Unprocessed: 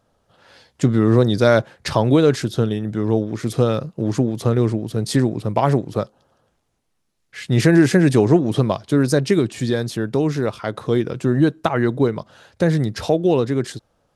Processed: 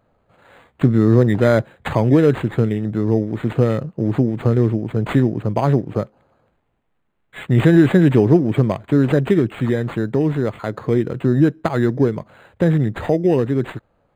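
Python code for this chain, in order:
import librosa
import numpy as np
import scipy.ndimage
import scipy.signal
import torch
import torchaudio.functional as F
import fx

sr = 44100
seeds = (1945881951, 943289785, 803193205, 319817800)

y = fx.dynamic_eq(x, sr, hz=910.0, q=0.75, threshold_db=-29.0, ratio=4.0, max_db=-5)
y = np.interp(np.arange(len(y)), np.arange(len(y))[::8], y[::8])
y = F.gain(torch.from_numpy(y), 2.5).numpy()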